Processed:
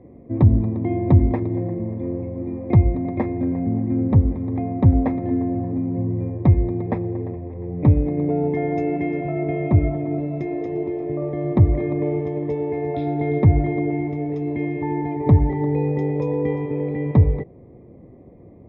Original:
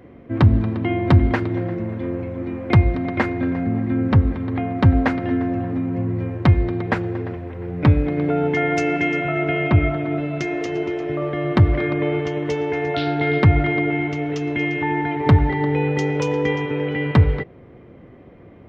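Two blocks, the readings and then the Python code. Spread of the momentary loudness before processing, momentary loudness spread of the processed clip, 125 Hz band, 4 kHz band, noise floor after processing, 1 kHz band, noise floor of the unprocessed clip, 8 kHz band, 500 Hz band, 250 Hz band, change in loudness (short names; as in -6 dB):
8 LU, 9 LU, 0.0 dB, under -20 dB, -45 dBFS, -5.5 dB, -44 dBFS, n/a, -1.5 dB, -0.5 dB, -1.0 dB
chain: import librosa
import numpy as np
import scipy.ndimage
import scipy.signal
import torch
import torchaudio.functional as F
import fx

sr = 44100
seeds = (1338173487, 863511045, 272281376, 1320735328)

y = scipy.signal.lfilter(np.full(30, 1.0 / 30), 1.0, x)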